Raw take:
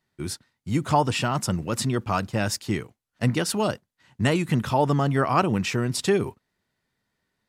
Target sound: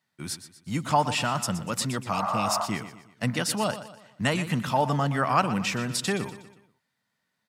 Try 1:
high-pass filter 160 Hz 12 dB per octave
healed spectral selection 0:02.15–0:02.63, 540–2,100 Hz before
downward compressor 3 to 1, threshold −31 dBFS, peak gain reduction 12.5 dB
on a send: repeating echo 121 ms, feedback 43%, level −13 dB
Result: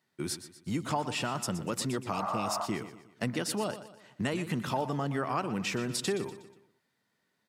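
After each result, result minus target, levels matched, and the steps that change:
downward compressor: peak gain reduction +12.5 dB; 500 Hz band +2.0 dB
remove: downward compressor 3 to 1, threshold −31 dBFS, peak gain reduction 12.5 dB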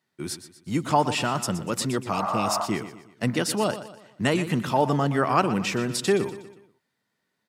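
500 Hz band +3.0 dB
add after high-pass filter: parametric band 370 Hz −10.5 dB 0.73 octaves

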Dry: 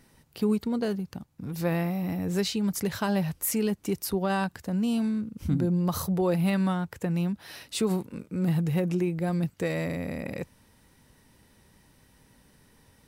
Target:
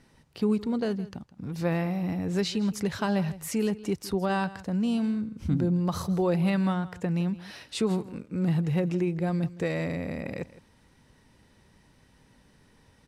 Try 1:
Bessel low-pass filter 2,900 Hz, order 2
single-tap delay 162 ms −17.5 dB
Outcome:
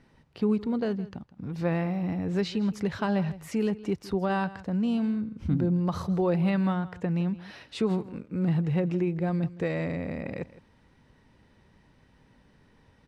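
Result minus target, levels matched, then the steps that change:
8,000 Hz band −10.0 dB
change: Bessel low-pass filter 6,400 Hz, order 2

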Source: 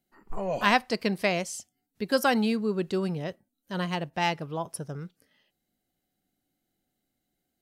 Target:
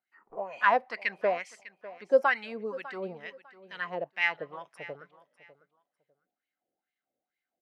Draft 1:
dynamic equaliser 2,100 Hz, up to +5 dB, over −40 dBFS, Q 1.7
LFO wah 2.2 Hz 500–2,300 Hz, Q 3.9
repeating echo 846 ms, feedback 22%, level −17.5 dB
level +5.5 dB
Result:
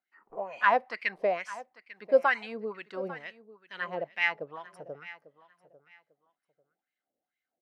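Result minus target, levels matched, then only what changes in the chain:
echo 246 ms late
change: repeating echo 600 ms, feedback 22%, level −17.5 dB

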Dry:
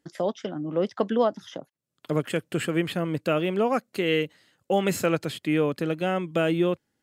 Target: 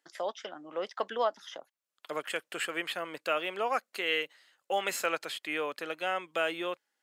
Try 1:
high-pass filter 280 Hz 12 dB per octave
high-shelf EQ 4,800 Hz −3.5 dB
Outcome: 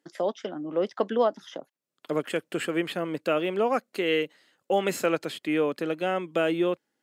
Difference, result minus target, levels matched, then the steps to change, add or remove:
250 Hz band +9.0 dB
change: high-pass filter 820 Hz 12 dB per octave

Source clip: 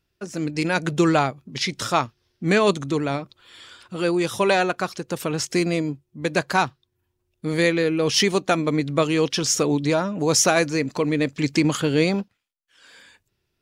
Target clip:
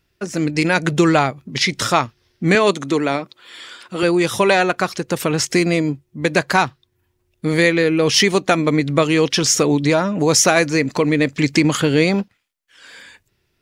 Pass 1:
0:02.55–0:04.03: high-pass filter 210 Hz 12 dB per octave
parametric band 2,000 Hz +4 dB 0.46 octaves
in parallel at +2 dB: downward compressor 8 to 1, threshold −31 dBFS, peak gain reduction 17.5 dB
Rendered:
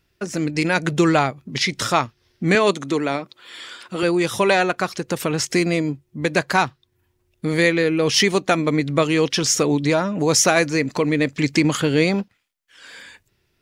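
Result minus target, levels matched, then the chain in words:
downward compressor: peak gain reduction +8.5 dB
0:02.55–0:04.03: high-pass filter 210 Hz 12 dB per octave
parametric band 2,000 Hz +4 dB 0.46 octaves
in parallel at +2 dB: downward compressor 8 to 1, threshold −21 dBFS, peak gain reduction 9 dB

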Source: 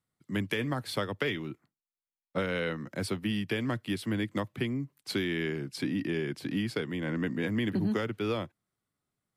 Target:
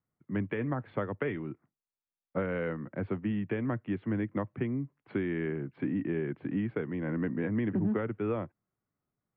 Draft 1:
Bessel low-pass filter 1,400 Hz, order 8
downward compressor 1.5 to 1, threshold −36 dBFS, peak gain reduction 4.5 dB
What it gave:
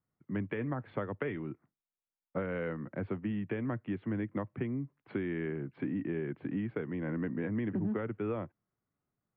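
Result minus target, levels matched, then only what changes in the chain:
downward compressor: peak gain reduction +4.5 dB
remove: downward compressor 1.5 to 1, threshold −36 dBFS, peak gain reduction 4.5 dB

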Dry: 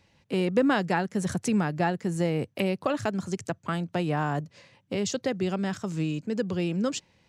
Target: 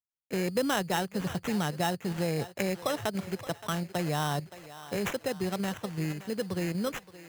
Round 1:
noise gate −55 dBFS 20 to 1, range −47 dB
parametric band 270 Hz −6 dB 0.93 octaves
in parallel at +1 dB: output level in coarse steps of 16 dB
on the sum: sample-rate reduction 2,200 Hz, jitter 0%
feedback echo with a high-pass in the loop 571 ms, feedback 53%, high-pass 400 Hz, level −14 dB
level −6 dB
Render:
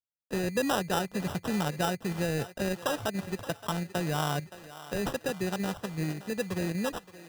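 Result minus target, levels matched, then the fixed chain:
sample-rate reduction: distortion +5 dB
noise gate −55 dBFS 20 to 1, range −47 dB
parametric band 270 Hz −6 dB 0.93 octaves
in parallel at +1 dB: output level in coarse steps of 16 dB
on the sum: sample-rate reduction 4,600 Hz, jitter 0%
feedback echo with a high-pass in the loop 571 ms, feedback 53%, high-pass 400 Hz, level −14 dB
level −6 dB

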